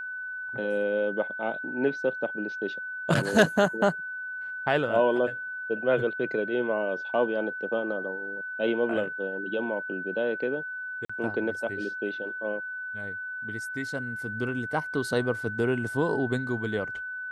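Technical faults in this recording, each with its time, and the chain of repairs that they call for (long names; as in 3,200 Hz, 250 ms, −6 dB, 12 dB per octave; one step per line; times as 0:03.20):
whistle 1,500 Hz −33 dBFS
0:11.05–0:11.10: drop-out 45 ms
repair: notch filter 1,500 Hz, Q 30
repair the gap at 0:11.05, 45 ms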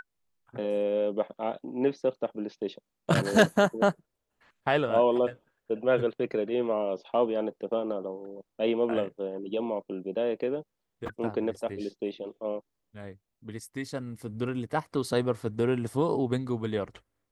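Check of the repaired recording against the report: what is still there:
none of them is left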